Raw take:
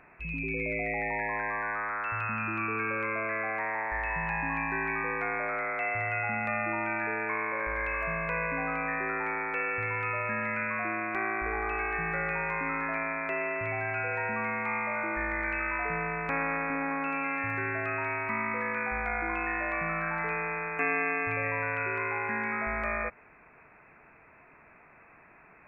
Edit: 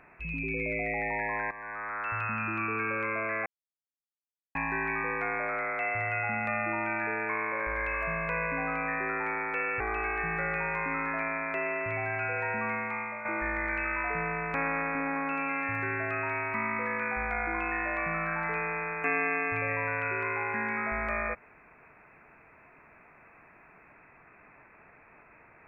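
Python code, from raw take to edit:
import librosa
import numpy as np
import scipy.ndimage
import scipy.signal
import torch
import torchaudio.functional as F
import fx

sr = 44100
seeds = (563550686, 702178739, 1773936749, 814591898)

y = fx.edit(x, sr, fx.fade_in_from(start_s=1.51, length_s=0.6, floor_db=-13.5),
    fx.silence(start_s=3.46, length_s=1.09),
    fx.cut(start_s=9.8, length_s=1.75),
    fx.fade_out_to(start_s=14.46, length_s=0.54, floor_db=-8.5), tone=tone)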